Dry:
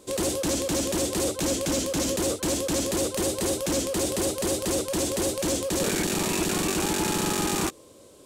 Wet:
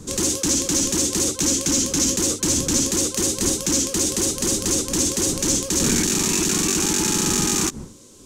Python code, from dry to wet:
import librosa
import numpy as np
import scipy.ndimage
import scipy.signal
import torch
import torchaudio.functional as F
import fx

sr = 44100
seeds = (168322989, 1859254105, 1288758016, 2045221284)

y = fx.dmg_wind(x, sr, seeds[0], corner_hz=320.0, level_db=-38.0)
y = fx.graphic_eq_15(y, sr, hz=(250, 630, 6300), db=(4, -11, 11))
y = y * 10.0 ** (2.5 / 20.0)